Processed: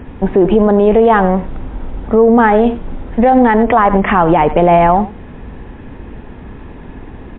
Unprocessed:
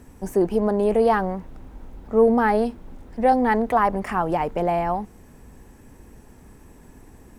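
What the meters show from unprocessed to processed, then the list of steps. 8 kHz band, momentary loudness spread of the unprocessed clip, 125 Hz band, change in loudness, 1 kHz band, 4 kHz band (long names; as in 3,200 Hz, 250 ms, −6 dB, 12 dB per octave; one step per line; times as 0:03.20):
can't be measured, 11 LU, +13.5 dB, +10.5 dB, +10.0 dB, +10.5 dB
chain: single-tap delay 92 ms −17.5 dB
boost into a limiter +16.5 dB
MP3 32 kbit/s 8,000 Hz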